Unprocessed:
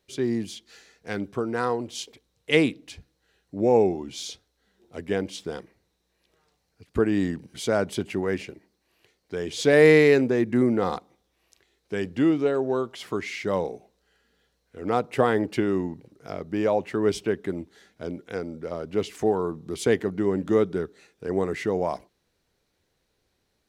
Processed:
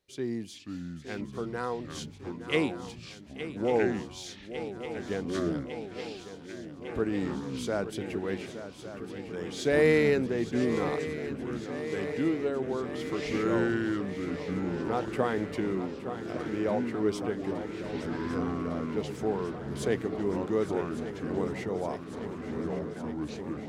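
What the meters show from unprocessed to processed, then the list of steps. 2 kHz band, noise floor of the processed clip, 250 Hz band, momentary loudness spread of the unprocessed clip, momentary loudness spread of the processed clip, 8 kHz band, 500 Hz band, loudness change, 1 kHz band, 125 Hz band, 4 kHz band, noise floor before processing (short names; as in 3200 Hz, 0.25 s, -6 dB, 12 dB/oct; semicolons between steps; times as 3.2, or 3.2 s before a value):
-5.5 dB, -46 dBFS, -4.0 dB, 16 LU, 12 LU, -6.0 dB, -6.0 dB, -7.0 dB, -5.5 dB, -3.5 dB, -5.5 dB, -74 dBFS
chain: swung echo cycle 1.154 s, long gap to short 3:1, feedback 75%, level -12 dB; echoes that change speed 0.425 s, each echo -5 st, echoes 3, each echo -6 dB; gain -7.5 dB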